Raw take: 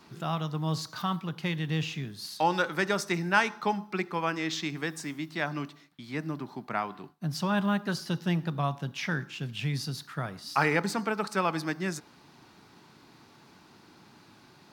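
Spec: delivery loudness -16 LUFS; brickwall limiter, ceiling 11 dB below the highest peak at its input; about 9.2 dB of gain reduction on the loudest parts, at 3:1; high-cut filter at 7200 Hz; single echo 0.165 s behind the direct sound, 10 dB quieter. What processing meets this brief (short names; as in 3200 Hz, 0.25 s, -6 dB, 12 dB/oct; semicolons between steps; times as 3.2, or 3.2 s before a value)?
LPF 7200 Hz; compressor 3:1, threshold -32 dBFS; limiter -28.5 dBFS; echo 0.165 s -10 dB; gain +23 dB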